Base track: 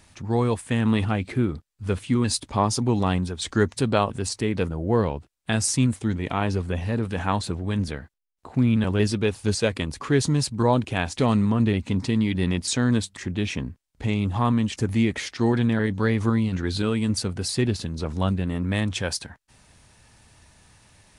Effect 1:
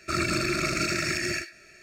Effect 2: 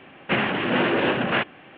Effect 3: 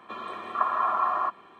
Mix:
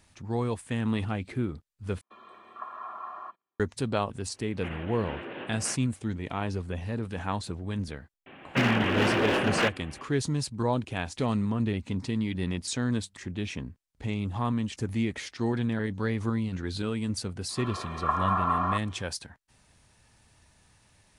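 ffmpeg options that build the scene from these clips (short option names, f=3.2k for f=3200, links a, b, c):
-filter_complex "[3:a]asplit=2[a][b];[2:a]asplit=2[c][d];[0:a]volume=-7dB[e];[a]agate=range=-24dB:threshold=-48dB:ratio=16:release=67:detection=peak[f];[d]asoftclip=type=hard:threshold=-20dB[g];[e]asplit=2[h][i];[h]atrim=end=2.014[j];[f]atrim=end=1.59,asetpts=PTS-STARTPTS,volume=-14.5dB[k];[i]atrim=start=3.596[l];[c]atrim=end=1.77,asetpts=PTS-STARTPTS,volume=-18dB,afade=t=in:d=0.004:c=hsin,afade=t=out:st=1.766:d=0.004:c=hsin,adelay=190953S[m];[g]atrim=end=1.77,asetpts=PTS-STARTPTS,volume=-2dB,afade=t=in:d=0.004:c=hsin,afade=t=out:st=1.766:d=0.004:c=hsin,adelay=364266S[n];[b]atrim=end=1.59,asetpts=PTS-STARTPTS,volume=-1.5dB,afade=t=in:d=0.05,afade=t=out:st=1.54:d=0.05,adelay=770868S[o];[j][k]acrossfade=d=0.004:c1=hsin:c2=hsin[p];[p][l]acrossfade=d=0.004:c1=hsin:c2=hsin[q];[q][m][n][o]amix=inputs=4:normalize=0"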